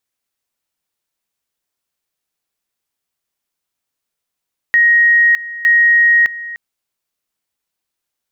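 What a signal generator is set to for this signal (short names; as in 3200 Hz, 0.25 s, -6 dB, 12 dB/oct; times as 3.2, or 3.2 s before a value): two-level tone 1880 Hz -7 dBFS, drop 17 dB, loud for 0.61 s, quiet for 0.30 s, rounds 2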